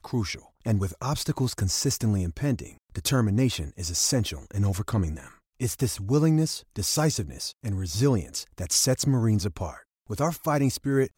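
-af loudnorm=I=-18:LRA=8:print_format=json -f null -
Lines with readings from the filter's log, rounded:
"input_i" : "-26.2",
"input_tp" : "-10.8",
"input_lra" : "1.5",
"input_thresh" : "-36.5",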